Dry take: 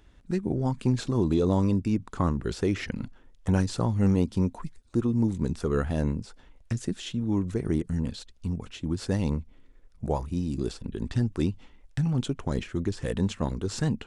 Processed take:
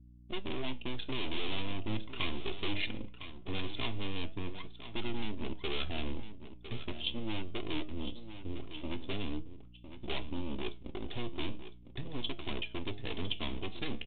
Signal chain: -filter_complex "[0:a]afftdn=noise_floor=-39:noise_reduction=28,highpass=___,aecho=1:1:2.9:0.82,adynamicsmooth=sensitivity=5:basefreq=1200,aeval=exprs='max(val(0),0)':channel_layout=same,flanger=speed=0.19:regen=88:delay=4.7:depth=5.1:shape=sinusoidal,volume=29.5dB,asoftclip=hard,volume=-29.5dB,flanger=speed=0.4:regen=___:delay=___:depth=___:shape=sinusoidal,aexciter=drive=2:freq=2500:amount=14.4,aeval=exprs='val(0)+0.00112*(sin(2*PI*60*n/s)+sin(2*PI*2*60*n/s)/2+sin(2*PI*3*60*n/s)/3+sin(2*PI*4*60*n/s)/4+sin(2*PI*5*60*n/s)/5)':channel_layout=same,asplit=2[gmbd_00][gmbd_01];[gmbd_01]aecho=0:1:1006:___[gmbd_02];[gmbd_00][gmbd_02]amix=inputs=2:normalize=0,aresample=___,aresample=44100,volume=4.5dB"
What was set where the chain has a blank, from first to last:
90, 75, 5.4, 9.4, 0.266, 8000